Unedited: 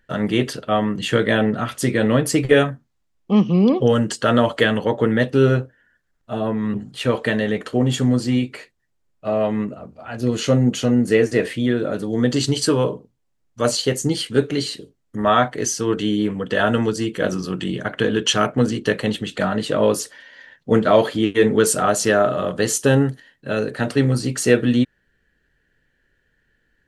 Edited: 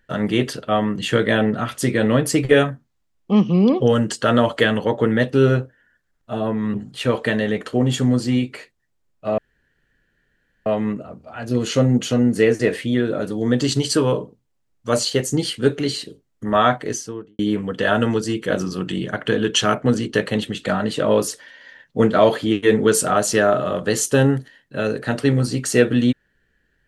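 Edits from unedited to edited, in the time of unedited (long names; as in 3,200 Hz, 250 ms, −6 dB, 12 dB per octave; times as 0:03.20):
0:09.38: splice in room tone 1.28 s
0:15.48–0:16.11: fade out and dull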